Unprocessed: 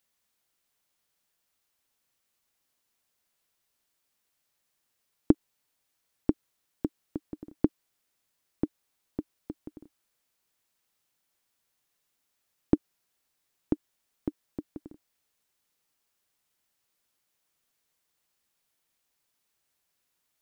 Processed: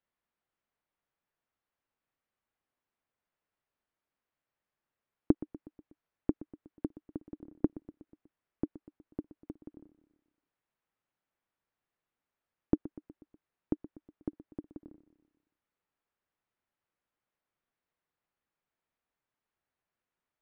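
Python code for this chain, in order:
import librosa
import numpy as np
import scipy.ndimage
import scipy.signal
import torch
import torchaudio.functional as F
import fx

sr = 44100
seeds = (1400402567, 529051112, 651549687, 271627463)

p1 = scipy.signal.sosfilt(scipy.signal.butter(2, 1900.0, 'lowpass', fs=sr, output='sos'), x)
p2 = p1 + fx.echo_feedback(p1, sr, ms=122, feedback_pct=56, wet_db=-16.5, dry=0)
y = p2 * 10.0 ** (-4.5 / 20.0)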